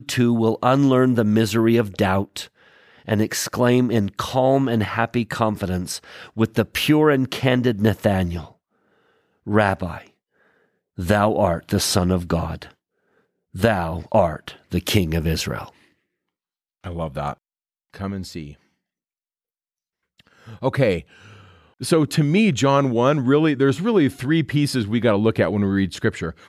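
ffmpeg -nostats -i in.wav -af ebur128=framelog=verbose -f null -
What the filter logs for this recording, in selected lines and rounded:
Integrated loudness:
  I:         -20.2 LUFS
  Threshold: -31.4 LUFS
Loudness range:
  LRA:        13.5 LU
  Threshold: -42.1 LUFS
  LRA low:   -32.4 LUFS
  LRA high:  -18.9 LUFS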